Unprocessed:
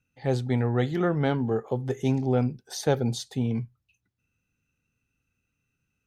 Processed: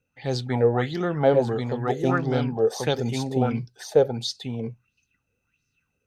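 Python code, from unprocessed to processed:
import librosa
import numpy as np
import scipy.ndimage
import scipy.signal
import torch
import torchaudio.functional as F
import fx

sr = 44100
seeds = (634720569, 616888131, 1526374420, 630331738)

y = x + 10.0 ** (-3.5 / 20.0) * np.pad(x, (int(1086 * sr / 1000.0), 0))[:len(x)]
y = fx.bell_lfo(y, sr, hz=1.5, low_hz=470.0, high_hz=5300.0, db=16)
y = F.gain(torch.from_numpy(y), -1.5).numpy()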